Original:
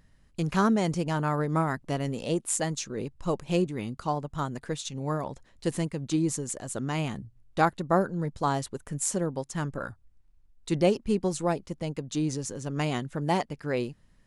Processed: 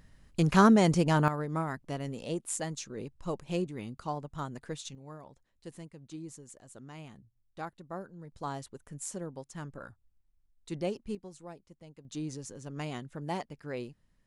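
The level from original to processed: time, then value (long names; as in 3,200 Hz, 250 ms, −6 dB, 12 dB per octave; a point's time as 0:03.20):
+3 dB
from 0:01.28 −6.5 dB
from 0:04.95 −17 dB
from 0:08.32 −10.5 dB
from 0:11.15 −19.5 dB
from 0:12.05 −9 dB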